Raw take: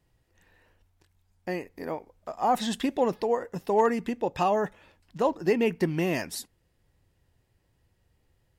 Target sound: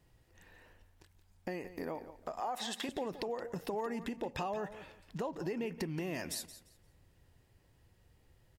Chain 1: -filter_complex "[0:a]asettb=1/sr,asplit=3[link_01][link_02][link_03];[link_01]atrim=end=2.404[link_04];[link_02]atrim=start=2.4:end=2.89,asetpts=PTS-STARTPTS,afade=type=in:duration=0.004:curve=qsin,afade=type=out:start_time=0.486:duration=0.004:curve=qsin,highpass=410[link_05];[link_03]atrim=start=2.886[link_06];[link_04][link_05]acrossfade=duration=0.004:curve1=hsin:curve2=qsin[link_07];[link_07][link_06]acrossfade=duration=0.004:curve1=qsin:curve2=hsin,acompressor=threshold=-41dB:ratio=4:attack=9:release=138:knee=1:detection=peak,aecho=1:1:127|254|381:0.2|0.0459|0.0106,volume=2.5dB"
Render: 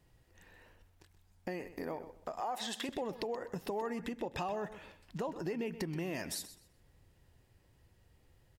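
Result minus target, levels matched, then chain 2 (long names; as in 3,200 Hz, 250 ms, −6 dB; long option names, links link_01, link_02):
echo 46 ms early
-filter_complex "[0:a]asettb=1/sr,asplit=3[link_01][link_02][link_03];[link_01]atrim=end=2.404[link_04];[link_02]atrim=start=2.4:end=2.89,asetpts=PTS-STARTPTS,afade=type=in:duration=0.004:curve=qsin,afade=type=out:start_time=0.486:duration=0.004:curve=qsin,highpass=410[link_05];[link_03]atrim=start=2.886[link_06];[link_04][link_05]acrossfade=duration=0.004:curve1=hsin:curve2=qsin[link_07];[link_07][link_06]acrossfade=duration=0.004:curve1=qsin:curve2=hsin,acompressor=threshold=-41dB:ratio=4:attack=9:release=138:knee=1:detection=peak,aecho=1:1:173|346|519:0.2|0.0459|0.0106,volume=2.5dB"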